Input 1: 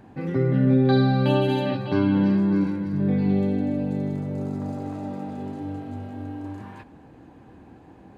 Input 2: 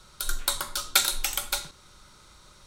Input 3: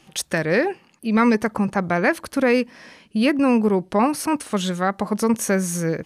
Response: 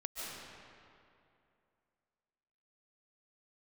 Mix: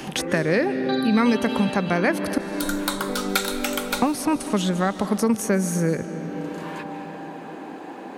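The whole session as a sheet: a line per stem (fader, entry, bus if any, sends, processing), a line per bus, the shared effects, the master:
-7.0 dB, 0.00 s, send -5 dB, HPF 220 Hz 24 dB/oct
-1.5 dB, 2.40 s, send -12.5 dB, dry
-4.5 dB, 0.00 s, muted 2.38–4.02, send -12.5 dB, bell 170 Hz +10.5 dB 2.5 oct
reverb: on, RT60 2.6 s, pre-delay 0.105 s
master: bell 170 Hz -7 dB 1.9 oct; three-band squash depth 70%

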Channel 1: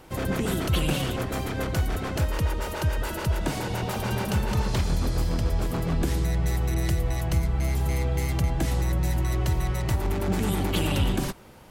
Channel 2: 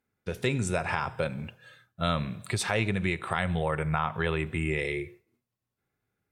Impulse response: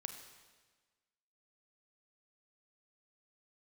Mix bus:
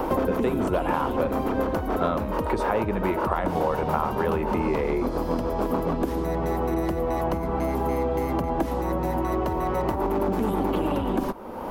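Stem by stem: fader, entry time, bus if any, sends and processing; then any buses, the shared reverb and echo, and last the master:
-3.5 dB, 0.00 s, no send, compressor, threshold -24 dBFS, peak gain reduction 6.5 dB
-3.0 dB, 0.00 s, no send, dry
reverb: off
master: graphic EQ 125/250/500/1000/2000/4000/8000 Hz -10/+10/+7/+11/-4/-5/-11 dB; three-band squash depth 100%

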